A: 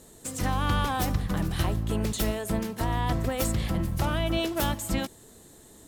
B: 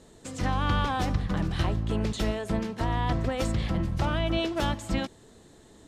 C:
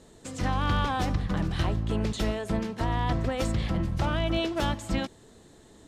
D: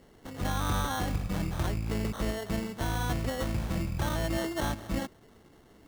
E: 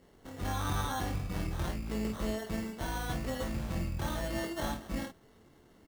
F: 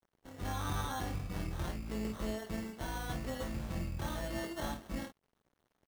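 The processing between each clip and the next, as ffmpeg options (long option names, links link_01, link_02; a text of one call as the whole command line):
ffmpeg -i in.wav -af "lowpass=5200" out.wav
ffmpeg -i in.wav -af "volume=18dB,asoftclip=hard,volume=-18dB" out.wav
ffmpeg -i in.wav -af "acrusher=samples=18:mix=1:aa=0.000001,volume=-3.5dB" out.wav
ffmpeg -i in.wav -af "aecho=1:1:23|51:0.562|0.473,volume=-5.5dB" out.wav
ffmpeg -i in.wav -af "aeval=exprs='sgn(val(0))*max(abs(val(0))-0.0015,0)':channel_layout=same,volume=-3dB" out.wav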